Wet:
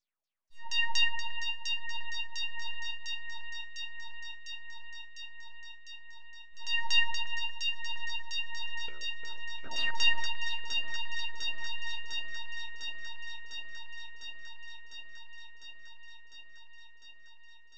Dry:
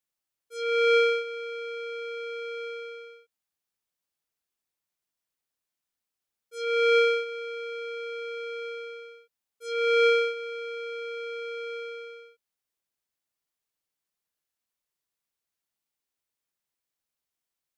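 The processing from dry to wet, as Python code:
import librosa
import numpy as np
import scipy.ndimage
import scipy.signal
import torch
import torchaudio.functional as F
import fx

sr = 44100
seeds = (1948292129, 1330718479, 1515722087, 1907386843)

y = fx.delta_hold(x, sr, step_db=-35.0, at=(8.88, 9.91))
y = np.abs(y)
y = fx.filter_lfo_lowpass(y, sr, shape='saw_down', hz=4.2, low_hz=580.0, high_hz=6300.0, q=5.3)
y = fx.echo_alternate(y, sr, ms=351, hz=2200.0, feedback_pct=87, wet_db=-5.5)
y = y * librosa.db_to_amplitude(-4.0)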